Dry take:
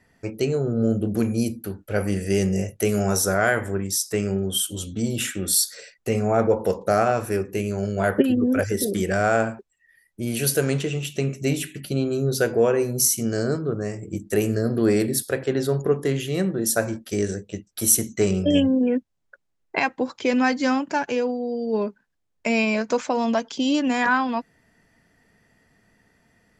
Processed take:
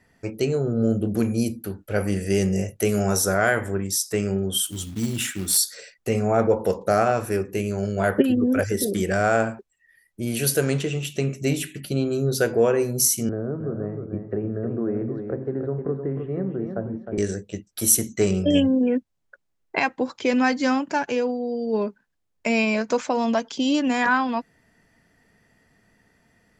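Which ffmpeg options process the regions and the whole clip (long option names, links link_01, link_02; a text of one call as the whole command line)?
ffmpeg -i in.wav -filter_complex "[0:a]asettb=1/sr,asplit=3[link_01][link_02][link_03];[link_01]atrim=end=4.664[link_04];[link_02]atrim=start=4.66:end=5.57,asetpts=PTS-STARTPTS,afade=type=in:duration=0.004:curve=qsin,afade=type=out:start_time=0.906:duration=0.004:curve=qsin,equalizer=frequency=530:width=2.2:gain=-12,acrusher=bits=4:mode=log:mix=0:aa=0.000001[link_05];[link_03]atrim=start=5.566[link_06];[link_04][link_05]acrossfade=duration=0.004:curve1=hsin:curve2=qsin[link_07];[link_07][link_06]acrossfade=duration=0.004:curve1=qsin:curve2=hsin,asettb=1/sr,asplit=3[link_08][link_09][link_10];[link_08]atrim=end=13.294[link_11];[link_09]atrim=start=13.29:end=17.18,asetpts=PTS-STARTPTS,afade=type=in:duration=0.004:curve=qsin,afade=type=out:start_time=3.886:duration=0.004:curve=qsin,lowpass=frequency=1500:width=0.5412,lowpass=frequency=1500:width=1.3066,acrossover=split=350|1100[link_12][link_13][link_14];[link_12]acompressor=threshold=-27dB:ratio=4[link_15];[link_13]acompressor=threshold=-32dB:ratio=4[link_16];[link_14]acompressor=threshold=-55dB:ratio=4[link_17];[link_15][link_16][link_17]amix=inputs=3:normalize=0,aecho=1:1:309|618|927:0.447|0.0804|0.0145,atrim=end_sample=171549[link_18];[link_10]atrim=start=17.176[link_19];[link_11][link_18]acrossfade=duration=0.004:curve1=hsin:curve2=qsin[link_20];[link_20][link_19]acrossfade=duration=0.004:curve1=qsin:curve2=hsin" out.wav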